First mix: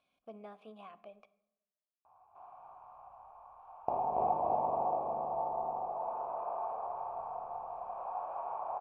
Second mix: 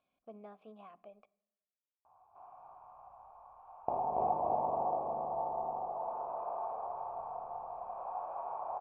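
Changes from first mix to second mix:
speech: send −7.5 dB
master: add high-shelf EQ 2,500 Hz −11 dB

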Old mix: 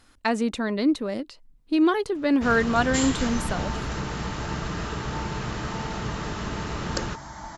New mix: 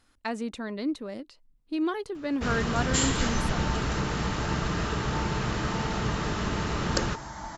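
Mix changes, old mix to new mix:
speech −8.0 dB
reverb: on, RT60 1.0 s

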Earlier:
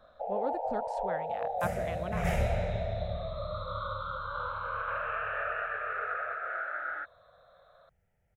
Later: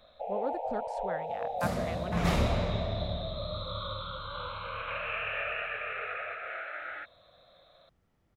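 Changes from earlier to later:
first sound: add high shelf with overshoot 1,900 Hz +7.5 dB, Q 3
second sound: remove phaser with its sweep stopped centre 1,100 Hz, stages 6

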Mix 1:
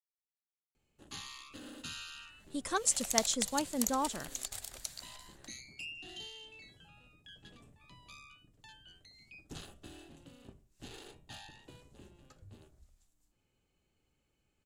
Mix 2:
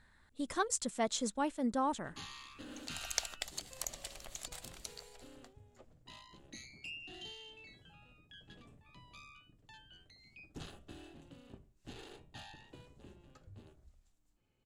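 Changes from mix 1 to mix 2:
speech: entry −2.15 s
first sound: entry +1.05 s
master: add high-shelf EQ 5,400 Hz −9.5 dB

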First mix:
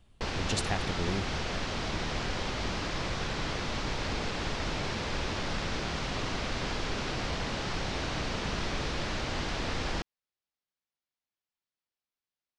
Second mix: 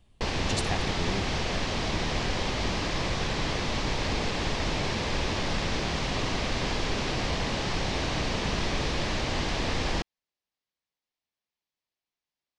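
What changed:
background +4.5 dB
master: add parametric band 1,400 Hz −6 dB 0.29 octaves

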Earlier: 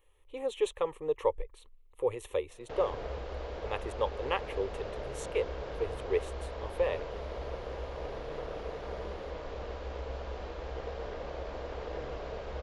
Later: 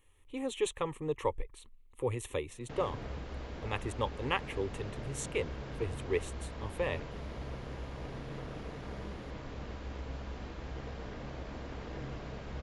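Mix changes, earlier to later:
background −4.0 dB
master: add octave-band graphic EQ 125/250/500/2,000/8,000 Hz +11/+10/−8/+3/+7 dB

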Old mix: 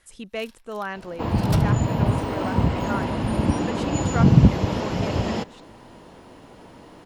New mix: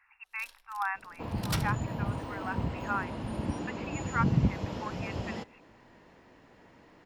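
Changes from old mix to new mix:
speech: add linear-phase brick-wall band-pass 750–2,800 Hz
second sound −12.0 dB

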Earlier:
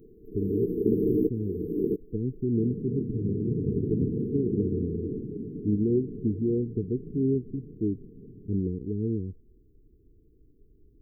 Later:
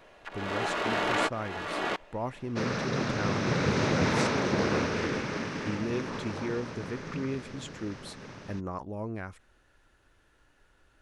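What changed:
speech −8.5 dB
first sound −11.0 dB
master: remove linear-phase brick-wall band-stop 470–12,000 Hz

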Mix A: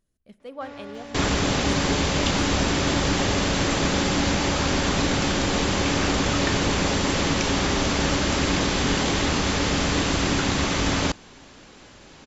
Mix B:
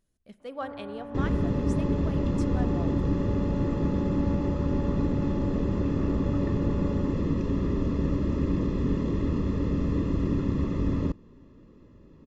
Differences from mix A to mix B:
first sound: add low-pass filter 1,300 Hz 24 dB per octave
second sound: add moving average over 58 samples

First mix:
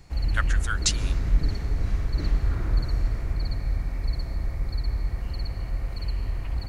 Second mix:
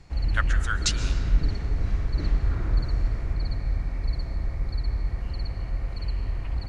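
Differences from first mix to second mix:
speech: send +11.0 dB
master: add high-frequency loss of the air 58 metres

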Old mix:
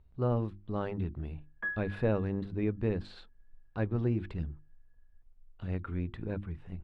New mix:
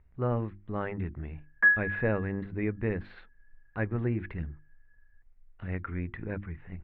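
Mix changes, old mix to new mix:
background +6.0 dB
master: add low-pass with resonance 2,000 Hz, resonance Q 3.5

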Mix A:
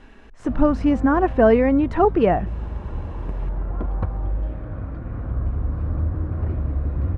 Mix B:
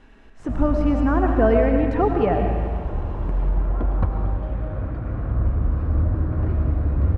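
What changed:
speech −6.5 dB
reverb: on, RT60 1.8 s

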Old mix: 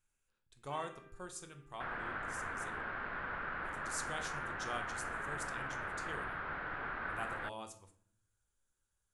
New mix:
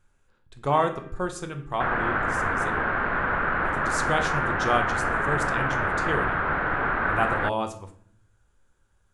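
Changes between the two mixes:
speech +6.0 dB
second sound +4.0 dB
master: remove first-order pre-emphasis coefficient 0.8

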